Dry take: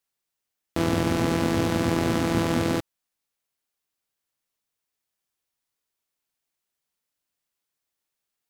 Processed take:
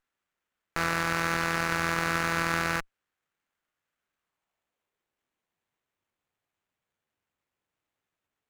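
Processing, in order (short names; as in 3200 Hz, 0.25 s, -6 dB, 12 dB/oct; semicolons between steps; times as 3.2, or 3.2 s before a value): high-pass sweep 1400 Hz -> 93 Hz, 4.12–5.89; running maximum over 9 samples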